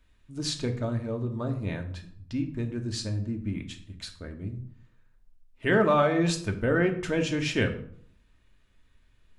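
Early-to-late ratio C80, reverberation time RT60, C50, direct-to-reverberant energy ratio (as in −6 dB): 14.5 dB, 0.60 s, 11.5 dB, 3.5 dB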